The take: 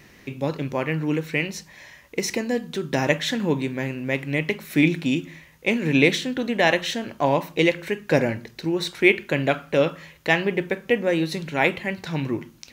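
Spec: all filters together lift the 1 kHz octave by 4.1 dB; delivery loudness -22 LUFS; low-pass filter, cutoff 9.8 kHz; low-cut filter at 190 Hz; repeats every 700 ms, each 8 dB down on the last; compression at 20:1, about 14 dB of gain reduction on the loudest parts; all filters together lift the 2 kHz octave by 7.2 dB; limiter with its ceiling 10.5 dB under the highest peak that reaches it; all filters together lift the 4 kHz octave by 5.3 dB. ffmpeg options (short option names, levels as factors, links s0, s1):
-af "highpass=190,lowpass=9800,equalizer=f=1000:t=o:g=4,equalizer=f=2000:t=o:g=6.5,equalizer=f=4000:t=o:g=4,acompressor=threshold=0.0891:ratio=20,alimiter=limit=0.126:level=0:latency=1,aecho=1:1:700|1400|2100|2800|3500:0.398|0.159|0.0637|0.0255|0.0102,volume=2.51"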